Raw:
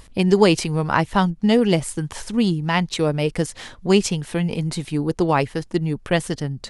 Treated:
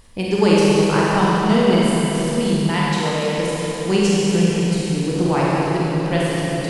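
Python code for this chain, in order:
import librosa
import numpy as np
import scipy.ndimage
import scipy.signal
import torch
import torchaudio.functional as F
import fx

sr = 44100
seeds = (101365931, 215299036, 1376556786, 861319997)

y = fx.highpass(x, sr, hz=410.0, slope=6, at=(2.7, 3.38))
y = fx.rev_schroeder(y, sr, rt60_s=3.9, comb_ms=31, drr_db=-7.0)
y = y * librosa.db_to_amplitude(-5.0)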